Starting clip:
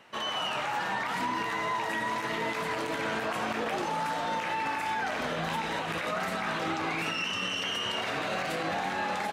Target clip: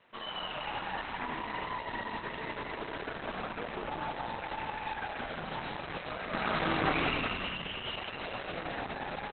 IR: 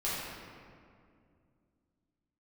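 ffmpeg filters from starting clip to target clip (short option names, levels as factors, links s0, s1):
-filter_complex "[0:a]asettb=1/sr,asplit=3[s0][s1][s2];[s0]atrim=end=6.334[s3];[s1]atrim=start=6.33:end=7.15,asetpts=PTS-STARTPTS,afade=t=in:d=0.004:c=qsin,afade=t=out:st=0.816:d=0.004:c=qsin,acontrast=41[s4];[s2]atrim=start=7.146[s5];[s3][s4]acrossfade=d=0.004:c1=hsin:c2=qsin[s6];[s6][s5]acrossfade=d=0.004:c1=qsin:c2=hsin,asettb=1/sr,asplit=3[s7][s8][s9];[s7]atrim=end=8.094[s10];[s8]atrim=start=8.09:end=8.53,asetpts=PTS-STARTPTS,afade=t=in:d=0.004:c=qsin,afade=t=out:st=0.436:d=0.004:c=qsin,equalizer=f=10000:t=o:w=0.52:g=9.5[s11];[s9]atrim=start=8.526[s12];[s10][s11]acrossfade=d=0.004:c1=hsin:c2=qsin[s13];[s13][s12]acrossfade=d=0.004:c1=qsin:c2=hsin,aeval=exprs='0.168*(cos(1*acos(clip(val(0)/0.168,-1,1)))-cos(1*PI/2))+0.0299*(cos(3*acos(clip(val(0)/0.168,-1,1)))-cos(3*PI/2))+0.00944*(cos(4*acos(clip(val(0)/0.168,-1,1)))-cos(4*PI/2))+0.0015*(cos(8*acos(clip(val(0)/0.168,-1,1)))-cos(8*PI/2))':c=same,asplit=9[s14][s15][s16][s17][s18][s19][s20][s21][s22];[s15]adelay=178,afreqshift=-35,volume=0.631[s23];[s16]adelay=356,afreqshift=-70,volume=0.367[s24];[s17]adelay=534,afreqshift=-105,volume=0.211[s25];[s18]adelay=712,afreqshift=-140,volume=0.123[s26];[s19]adelay=890,afreqshift=-175,volume=0.0716[s27];[s20]adelay=1068,afreqshift=-210,volume=0.0412[s28];[s21]adelay=1246,afreqshift=-245,volume=0.024[s29];[s22]adelay=1424,afreqshift=-280,volume=0.014[s30];[s14][s23][s24][s25][s26][s27][s28][s29][s30]amix=inputs=9:normalize=0" -ar 48000 -c:a libopus -b:a 8k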